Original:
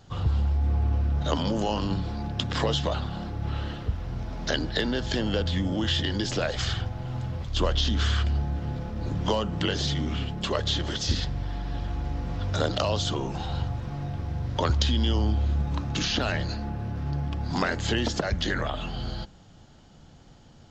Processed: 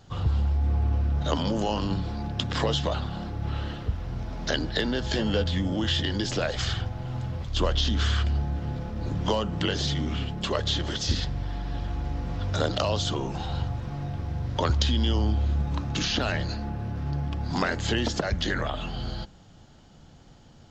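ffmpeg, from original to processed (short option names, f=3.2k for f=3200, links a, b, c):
-filter_complex "[0:a]asettb=1/sr,asplit=3[a][b][c];[a]atrim=end=5.034[d];[b]atrim=start=5.03:end=5.44,asetpts=PTS-STARTPTS,afade=t=in:d=0.004:c=qsin,afade=t=out:st=0.406:d=0.004:c=qsin,asplit=2[e][f];[f]adelay=14,volume=-7dB[g];[e][g]amix=inputs=2:normalize=0,atrim=end_sample=18081[h];[c]atrim=start=5.436[i];[d][h]acrossfade=d=0.004:c1=hsin:c2=qsin[j];[j][i]acrossfade=d=0.004:c1=qsin:c2=hsin"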